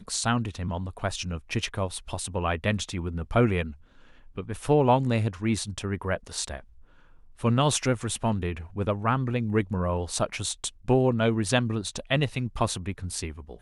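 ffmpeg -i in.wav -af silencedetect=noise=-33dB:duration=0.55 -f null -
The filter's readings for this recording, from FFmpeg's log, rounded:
silence_start: 3.71
silence_end: 4.37 | silence_duration: 0.67
silence_start: 6.60
silence_end: 7.41 | silence_duration: 0.82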